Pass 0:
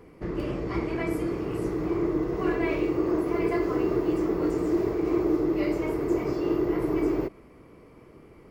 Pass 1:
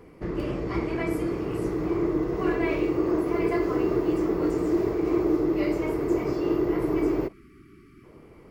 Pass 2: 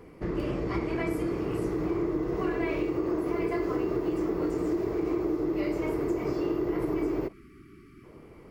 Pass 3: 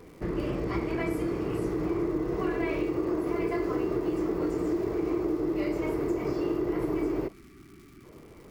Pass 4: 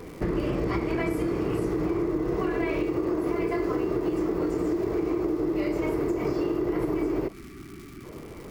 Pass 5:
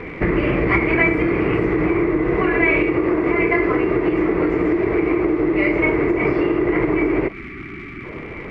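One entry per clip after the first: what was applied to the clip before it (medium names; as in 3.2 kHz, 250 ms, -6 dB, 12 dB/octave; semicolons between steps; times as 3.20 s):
spectral selection erased 7.33–8.04 s, 420–1100 Hz; trim +1 dB
compression, threshold -25 dBFS, peak gain reduction 7 dB
crackle 340 per s -47 dBFS
compression, threshold -32 dBFS, peak gain reduction 8.5 dB; trim +8.5 dB
resonant low-pass 2.2 kHz, resonance Q 4.5; trim +8 dB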